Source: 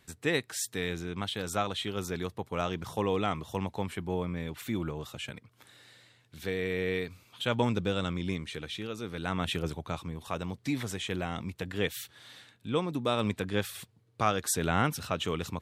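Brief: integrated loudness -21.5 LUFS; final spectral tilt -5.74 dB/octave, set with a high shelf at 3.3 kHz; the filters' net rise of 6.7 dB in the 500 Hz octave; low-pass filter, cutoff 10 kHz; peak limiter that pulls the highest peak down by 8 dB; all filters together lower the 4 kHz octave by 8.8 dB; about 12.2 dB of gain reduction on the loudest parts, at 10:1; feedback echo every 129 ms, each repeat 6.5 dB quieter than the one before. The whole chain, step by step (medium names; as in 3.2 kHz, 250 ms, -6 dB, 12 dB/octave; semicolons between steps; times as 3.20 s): low-pass 10 kHz; peaking EQ 500 Hz +8 dB; treble shelf 3.3 kHz -8.5 dB; peaking EQ 4 kHz -6 dB; compression 10:1, threshold -32 dBFS; peak limiter -26.5 dBFS; feedback delay 129 ms, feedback 47%, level -6.5 dB; trim +17 dB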